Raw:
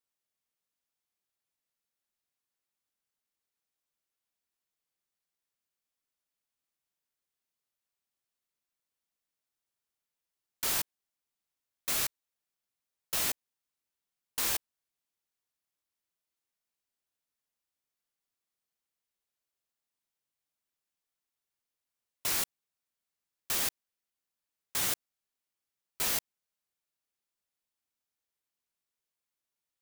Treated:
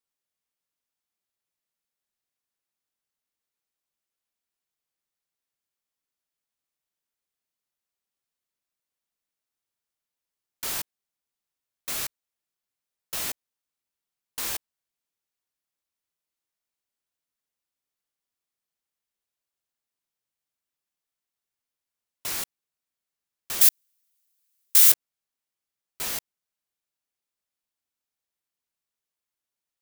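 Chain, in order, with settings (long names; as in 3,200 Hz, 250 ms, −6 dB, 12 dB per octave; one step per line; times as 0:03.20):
0:23.61–0:24.92: spectral tilt +4.5 dB per octave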